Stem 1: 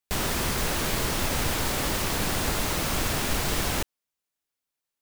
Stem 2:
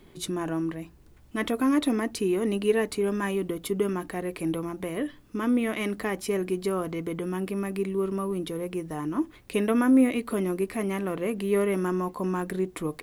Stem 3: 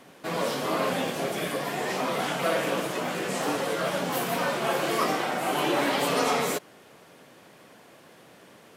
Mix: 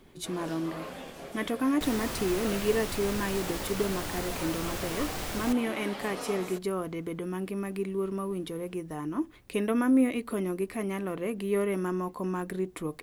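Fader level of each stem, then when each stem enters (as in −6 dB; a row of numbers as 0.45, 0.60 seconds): −9.5, −3.5, −14.0 decibels; 1.70, 0.00, 0.00 seconds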